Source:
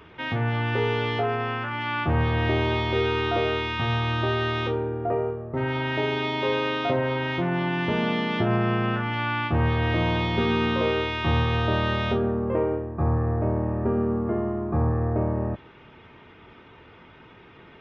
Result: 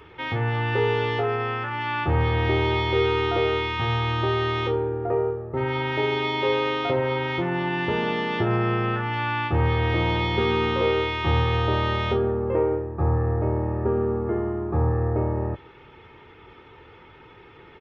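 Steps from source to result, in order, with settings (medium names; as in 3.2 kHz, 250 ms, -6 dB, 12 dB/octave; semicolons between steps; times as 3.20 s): comb 2.3 ms, depth 48%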